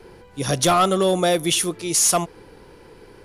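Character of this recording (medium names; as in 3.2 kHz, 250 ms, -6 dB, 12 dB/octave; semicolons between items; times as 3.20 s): noise floor -48 dBFS; spectral tilt -3.0 dB/octave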